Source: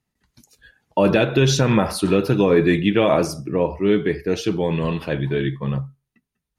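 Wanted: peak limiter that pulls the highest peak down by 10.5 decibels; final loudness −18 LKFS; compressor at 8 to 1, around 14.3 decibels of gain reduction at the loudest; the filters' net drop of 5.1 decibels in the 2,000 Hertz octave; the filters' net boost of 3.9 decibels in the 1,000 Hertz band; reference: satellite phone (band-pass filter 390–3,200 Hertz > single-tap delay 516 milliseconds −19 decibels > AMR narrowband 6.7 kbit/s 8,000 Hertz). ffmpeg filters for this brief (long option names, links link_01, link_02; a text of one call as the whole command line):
ffmpeg -i in.wav -af "equalizer=frequency=1000:width_type=o:gain=7,equalizer=frequency=2000:width_type=o:gain=-8.5,acompressor=threshold=-26dB:ratio=8,alimiter=limit=-23.5dB:level=0:latency=1,highpass=390,lowpass=3200,aecho=1:1:516:0.112,volume=21.5dB" -ar 8000 -c:a libopencore_amrnb -b:a 6700 out.amr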